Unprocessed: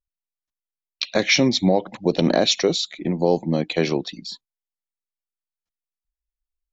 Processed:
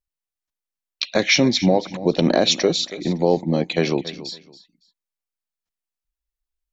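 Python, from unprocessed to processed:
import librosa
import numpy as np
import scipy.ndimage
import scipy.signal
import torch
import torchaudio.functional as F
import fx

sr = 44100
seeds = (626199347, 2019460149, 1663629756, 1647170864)

y = fx.echo_feedback(x, sr, ms=280, feedback_pct=23, wet_db=-16)
y = F.gain(torch.from_numpy(y), 1.0).numpy()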